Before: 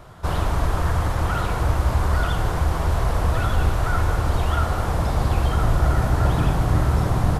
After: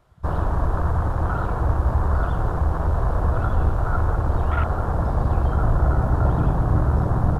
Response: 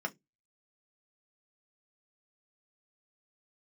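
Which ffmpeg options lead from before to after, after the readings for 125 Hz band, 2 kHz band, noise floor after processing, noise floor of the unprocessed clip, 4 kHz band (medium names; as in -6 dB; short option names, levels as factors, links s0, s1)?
0.0 dB, -5.0 dB, -26 dBFS, -25 dBFS, under -15 dB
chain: -af "afwtdn=0.0562"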